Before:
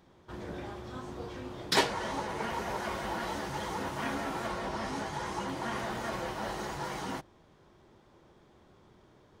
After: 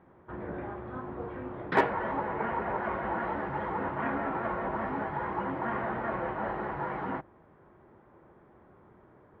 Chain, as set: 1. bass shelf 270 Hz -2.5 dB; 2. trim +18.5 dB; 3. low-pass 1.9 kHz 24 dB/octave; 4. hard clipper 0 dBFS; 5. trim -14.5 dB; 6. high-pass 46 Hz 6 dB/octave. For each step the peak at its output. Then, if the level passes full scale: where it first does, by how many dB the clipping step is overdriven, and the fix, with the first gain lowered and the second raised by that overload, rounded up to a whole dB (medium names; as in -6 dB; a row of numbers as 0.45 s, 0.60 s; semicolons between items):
-13.0 dBFS, +5.5 dBFS, +4.0 dBFS, 0.0 dBFS, -14.5 dBFS, -13.5 dBFS; step 2, 4.0 dB; step 2 +14.5 dB, step 5 -10.5 dB